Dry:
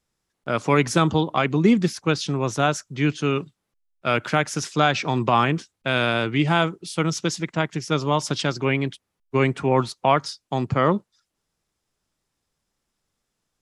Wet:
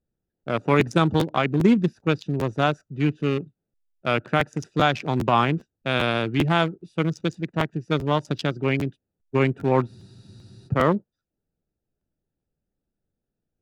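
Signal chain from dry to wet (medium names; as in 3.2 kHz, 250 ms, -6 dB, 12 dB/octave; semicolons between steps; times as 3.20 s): local Wiener filter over 41 samples; spectral freeze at 9.89 s, 0.78 s; crackling interface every 0.40 s, samples 512, repeat, from 0.39 s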